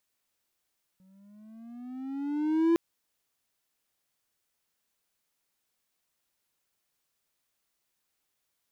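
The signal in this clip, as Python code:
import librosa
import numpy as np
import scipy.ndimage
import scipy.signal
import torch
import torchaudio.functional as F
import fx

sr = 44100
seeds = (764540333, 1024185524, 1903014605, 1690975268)

y = fx.riser_tone(sr, length_s=1.76, level_db=-17.0, wave='triangle', hz=185.0, rise_st=10.5, swell_db=38.5)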